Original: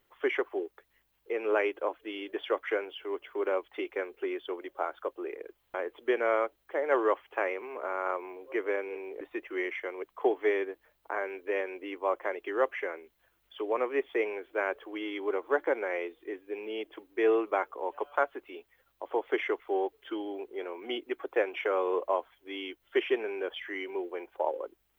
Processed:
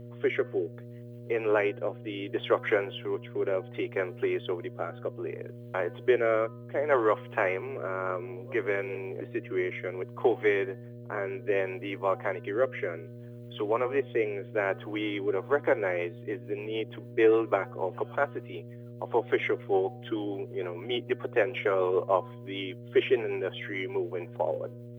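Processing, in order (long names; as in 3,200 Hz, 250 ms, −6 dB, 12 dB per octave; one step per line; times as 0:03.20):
rotating-speaker cabinet horn 0.65 Hz, later 6.7 Hz, at 0:14.98
hum with harmonics 120 Hz, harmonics 5, −49 dBFS −5 dB per octave
hum removal 252.2 Hz, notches 7
level +5 dB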